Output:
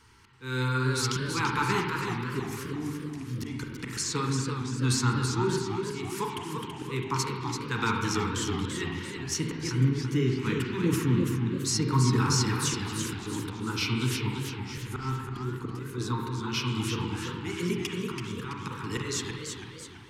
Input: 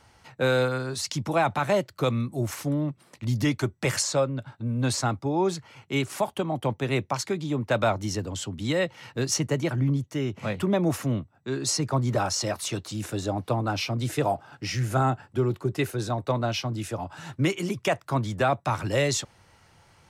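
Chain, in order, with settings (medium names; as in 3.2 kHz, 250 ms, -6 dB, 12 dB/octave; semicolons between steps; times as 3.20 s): elliptic band-stop 450–910 Hz, stop band 40 dB; hum notches 50/100/150/200 Hz; slow attack 310 ms; spring tank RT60 1.7 s, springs 31/40/45 ms, chirp 35 ms, DRR 1 dB; modulated delay 334 ms, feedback 47%, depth 143 cents, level -6 dB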